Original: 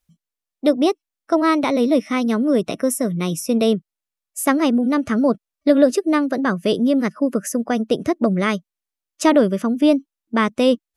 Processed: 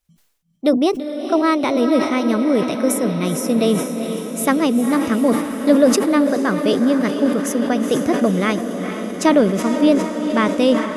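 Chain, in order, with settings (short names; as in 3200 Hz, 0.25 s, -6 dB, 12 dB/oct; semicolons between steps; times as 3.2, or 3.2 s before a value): on a send: diffused feedback echo 0.455 s, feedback 72%, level -8.5 dB; on the sum: sustainer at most 74 dB/s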